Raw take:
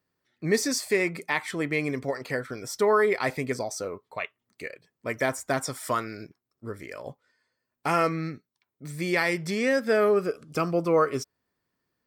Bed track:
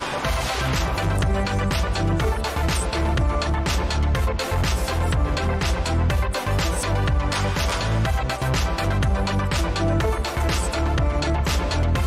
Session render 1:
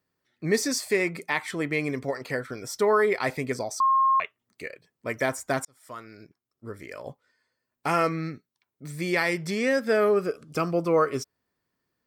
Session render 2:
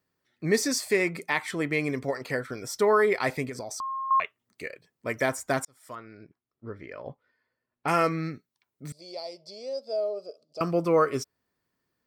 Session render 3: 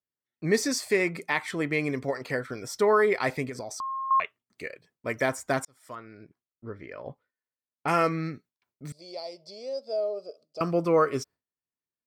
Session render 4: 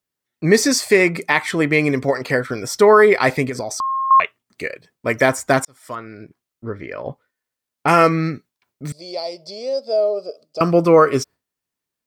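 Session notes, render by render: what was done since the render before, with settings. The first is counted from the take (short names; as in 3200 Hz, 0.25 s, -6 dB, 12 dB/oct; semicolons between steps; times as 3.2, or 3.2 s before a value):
3.8–4.2 bleep 1070 Hz -17.5 dBFS; 5.65–6.99 fade in
3.46–4.11 compressor, threshold -32 dBFS; 5.95–7.88 air absorption 270 m; 8.92–10.61 double band-pass 1700 Hz, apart 2.9 oct
gate with hold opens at -53 dBFS; high shelf 8200 Hz -5 dB
gain +11 dB; limiter -2 dBFS, peak gain reduction 1.5 dB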